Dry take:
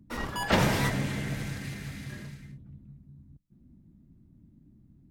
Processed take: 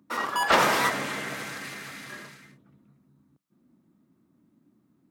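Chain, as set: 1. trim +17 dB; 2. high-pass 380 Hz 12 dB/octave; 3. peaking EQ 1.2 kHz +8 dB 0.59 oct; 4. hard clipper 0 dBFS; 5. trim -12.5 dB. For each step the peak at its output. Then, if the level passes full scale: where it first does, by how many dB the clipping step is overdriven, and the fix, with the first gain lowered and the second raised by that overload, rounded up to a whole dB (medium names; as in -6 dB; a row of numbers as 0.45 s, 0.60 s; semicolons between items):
+6.0 dBFS, +5.0 dBFS, +6.5 dBFS, 0.0 dBFS, -12.5 dBFS; step 1, 6.5 dB; step 1 +10 dB, step 5 -5.5 dB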